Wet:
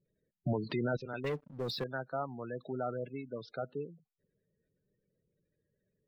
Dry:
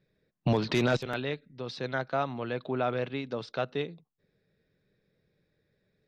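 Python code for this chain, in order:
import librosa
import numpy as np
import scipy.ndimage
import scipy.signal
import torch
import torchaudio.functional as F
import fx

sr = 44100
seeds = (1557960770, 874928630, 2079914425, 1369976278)

y = fx.spec_gate(x, sr, threshold_db=-15, keep='strong')
y = fx.leveller(y, sr, passes=3, at=(1.24, 1.84))
y = F.gain(torch.from_numpy(y), -6.5).numpy()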